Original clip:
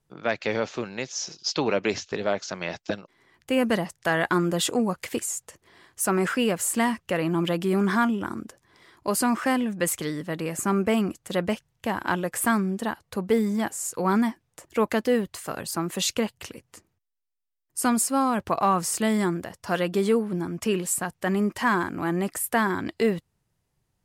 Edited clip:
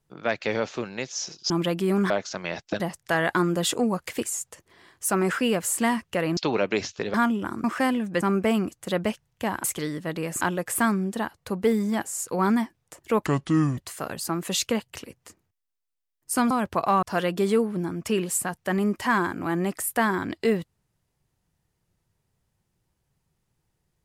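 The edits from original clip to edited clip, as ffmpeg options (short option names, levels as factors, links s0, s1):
-filter_complex "[0:a]asplit=14[s0][s1][s2][s3][s4][s5][s6][s7][s8][s9][s10][s11][s12][s13];[s0]atrim=end=1.502[s14];[s1]atrim=start=7.328:end=7.932[s15];[s2]atrim=start=2.268:end=2.972[s16];[s3]atrim=start=3.758:end=7.332[s17];[s4]atrim=start=1.498:end=2.272[s18];[s5]atrim=start=7.928:end=8.432[s19];[s6]atrim=start=9.298:end=9.872[s20];[s7]atrim=start=10.638:end=12.072[s21];[s8]atrim=start=9.868:end=10.642[s22];[s9]atrim=start=12.068:end=14.924[s23];[s10]atrim=start=14.92:end=15.25,asetpts=PTS-STARTPTS,asetrate=28224,aresample=44100,atrim=end_sample=22739,asetpts=PTS-STARTPTS[s24];[s11]atrim=start=15.246:end=17.982[s25];[s12]atrim=start=18.248:end=18.772[s26];[s13]atrim=start=19.588[s27];[s14][s15]acrossfade=d=0.004:c1=hsin:c2=hsin[s28];[s28][s16]acrossfade=d=0.004:c1=hsin:c2=hsin[s29];[s29][s17]acrossfade=d=0.004:c1=hsin:c2=hsin[s30];[s30][s18]acrossfade=d=0.004:c1=hsin:c2=hsin[s31];[s31][s19]acrossfade=d=0.004:c1=hsin:c2=hsin[s32];[s32][s20]acrossfade=d=0.004:c1=hsin:c2=hsin[s33];[s33][s21]acrossfade=d=0.004:c1=hsin:c2=hsin[s34];[s34][s22]acrossfade=d=0.004:c1=hsin:c2=hsin[s35];[s35][s23]acrossfade=d=0.004:c1=hsin:c2=hsin[s36];[s36][s24]acrossfade=d=0.004:c1=hsin:c2=hsin[s37];[s37][s25]acrossfade=d=0.004:c1=hsin:c2=hsin[s38];[s38][s26]acrossfade=d=0.004:c1=hsin:c2=hsin[s39];[s39][s27]acrossfade=d=0.004:c1=hsin:c2=hsin"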